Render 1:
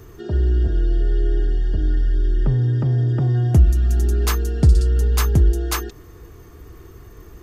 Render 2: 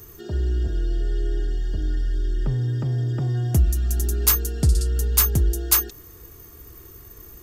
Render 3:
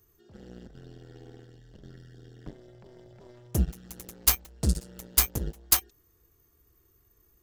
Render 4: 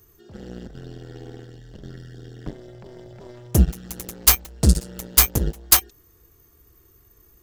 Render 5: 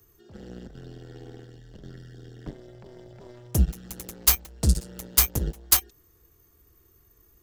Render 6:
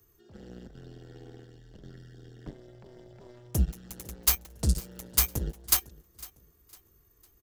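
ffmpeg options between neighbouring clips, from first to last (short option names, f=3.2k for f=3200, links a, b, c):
-af "aemphasis=mode=production:type=75fm,volume=-4.5dB"
-af "aeval=exprs='0.891*(cos(1*acos(clip(val(0)/0.891,-1,1)))-cos(1*PI/2))+0.141*(cos(7*acos(clip(val(0)/0.891,-1,1)))-cos(7*PI/2))':c=same,volume=-1.5dB"
-af "apsyclip=10.5dB,volume=-1dB"
-filter_complex "[0:a]acrossover=split=140|3000[a][b][c];[b]acompressor=threshold=-25dB:ratio=2.5[d];[a][d][c]amix=inputs=3:normalize=0,volume=-4.5dB"
-af "aecho=1:1:504|1008|1512:0.0891|0.033|0.0122,volume=-4.5dB"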